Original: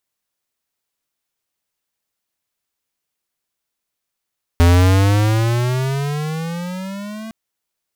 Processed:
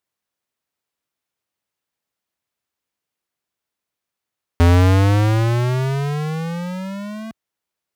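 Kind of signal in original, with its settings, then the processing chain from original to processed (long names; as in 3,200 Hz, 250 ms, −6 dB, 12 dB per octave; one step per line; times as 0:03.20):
pitch glide with a swell square, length 2.71 s, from 84.3 Hz, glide +17 semitones, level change −21 dB, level −9.5 dB
high-pass filter 56 Hz
high-shelf EQ 3,700 Hz −7 dB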